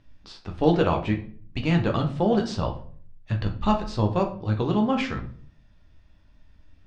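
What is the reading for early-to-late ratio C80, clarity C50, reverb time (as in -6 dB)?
15.5 dB, 11.0 dB, 0.50 s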